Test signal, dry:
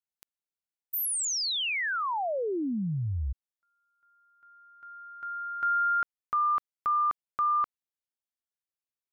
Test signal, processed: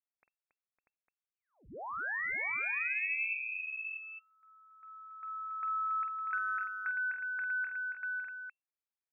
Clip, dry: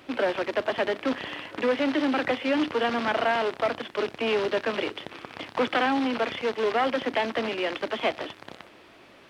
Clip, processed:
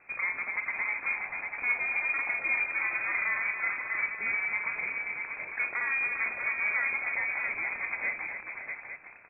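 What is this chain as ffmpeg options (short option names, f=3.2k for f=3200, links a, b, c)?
-filter_complex "[0:a]acrossover=split=260|1300[a][b][c];[c]acompressor=threshold=-40dB:ratio=6:attack=21:release=36[d];[a][b][d]amix=inputs=3:normalize=0,aecho=1:1:48|278|556|641|853:0.376|0.398|0.251|0.501|0.316,lowpass=f=2.3k:t=q:w=0.5098,lowpass=f=2.3k:t=q:w=0.6013,lowpass=f=2.3k:t=q:w=0.9,lowpass=f=2.3k:t=q:w=2.563,afreqshift=-2700,volume=-6.5dB"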